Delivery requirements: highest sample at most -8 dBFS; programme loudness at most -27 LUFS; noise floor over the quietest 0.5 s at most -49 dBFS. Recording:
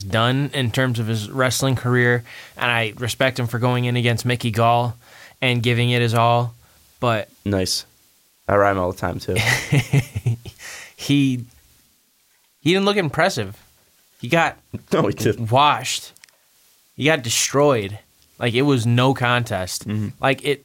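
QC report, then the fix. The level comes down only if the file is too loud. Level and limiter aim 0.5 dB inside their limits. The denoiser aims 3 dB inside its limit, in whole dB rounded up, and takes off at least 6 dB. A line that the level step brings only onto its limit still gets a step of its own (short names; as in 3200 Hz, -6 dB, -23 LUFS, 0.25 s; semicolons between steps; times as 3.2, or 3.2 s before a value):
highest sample -3.5 dBFS: fail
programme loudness -19.5 LUFS: fail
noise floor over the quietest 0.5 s -61 dBFS: OK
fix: gain -8 dB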